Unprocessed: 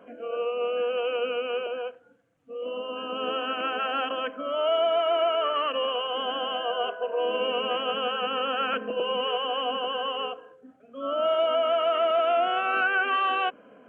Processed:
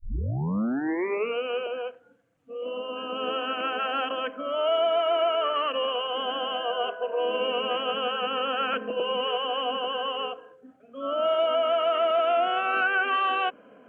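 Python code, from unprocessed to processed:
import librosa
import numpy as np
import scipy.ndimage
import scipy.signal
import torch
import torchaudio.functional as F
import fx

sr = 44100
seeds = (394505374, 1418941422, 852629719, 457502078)

y = fx.tape_start_head(x, sr, length_s=1.38)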